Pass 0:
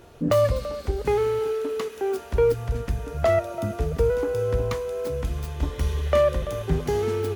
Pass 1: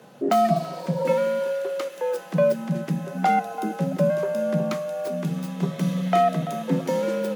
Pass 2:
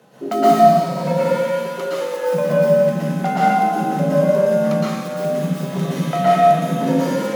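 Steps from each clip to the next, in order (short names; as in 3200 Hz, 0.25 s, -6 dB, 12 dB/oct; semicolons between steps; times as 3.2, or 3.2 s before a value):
frequency shift +110 Hz; spectral repair 0.52–1.11, 420–1100 Hz both
plate-style reverb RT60 1.6 s, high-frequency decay 0.9×, pre-delay 0.105 s, DRR -9.5 dB; gain -3 dB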